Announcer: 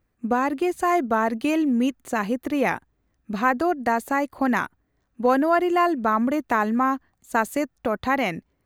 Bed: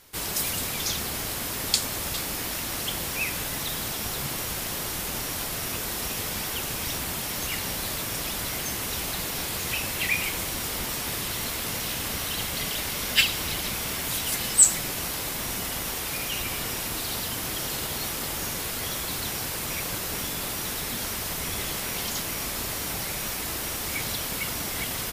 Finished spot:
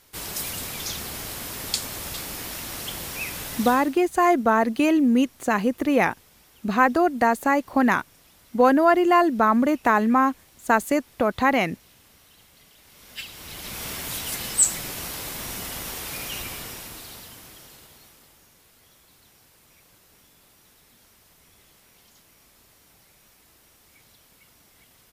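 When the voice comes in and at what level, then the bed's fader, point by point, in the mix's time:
3.35 s, +2.5 dB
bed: 0:03.68 −3 dB
0:04.06 −25 dB
0:12.78 −25 dB
0:13.84 −2.5 dB
0:16.37 −2.5 dB
0:18.47 −26 dB

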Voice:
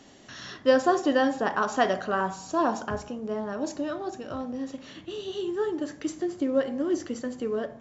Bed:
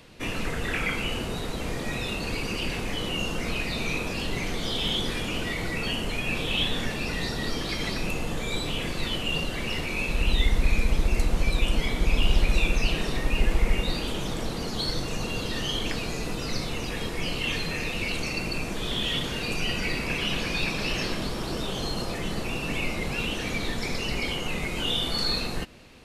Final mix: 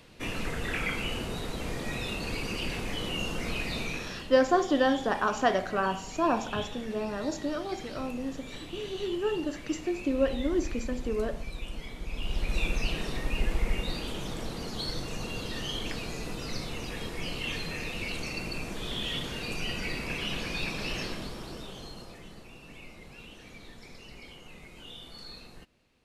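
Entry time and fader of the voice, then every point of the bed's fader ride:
3.65 s, −1.5 dB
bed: 0:03.78 −3.5 dB
0:04.34 −14.5 dB
0:12.07 −14.5 dB
0:12.63 −5.5 dB
0:20.98 −5.5 dB
0:22.48 −19 dB

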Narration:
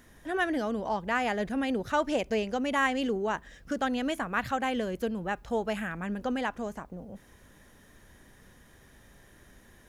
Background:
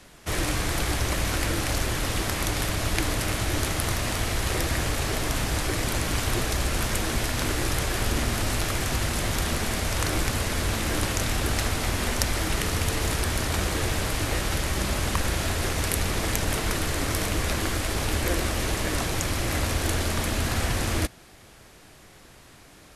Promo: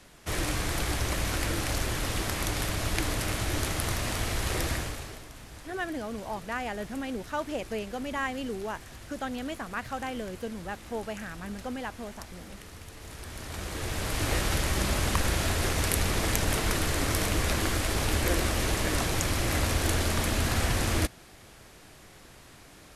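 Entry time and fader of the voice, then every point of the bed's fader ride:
5.40 s, −5.0 dB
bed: 0:04.71 −3.5 dB
0:05.29 −20 dB
0:12.94 −20 dB
0:14.30 −1 dB

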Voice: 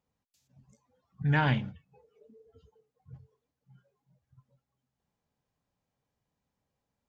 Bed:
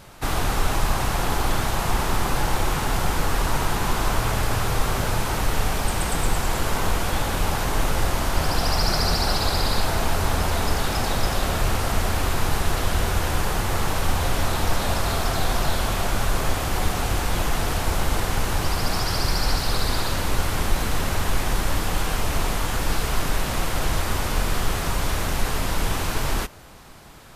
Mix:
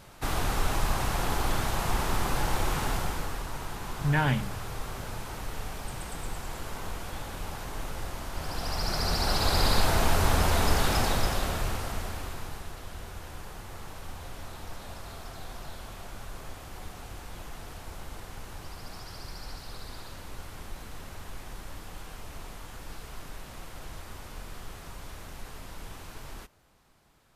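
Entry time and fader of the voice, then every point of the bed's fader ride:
2.80 s, +0.5 dB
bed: 0:02.87 −5.5 dB
0:03.46 −14 dB
0:08.31 −14 dB
0:09.64 −1.5 dB
0:10.96 −1.5 dB
0:12.76 −19 dB

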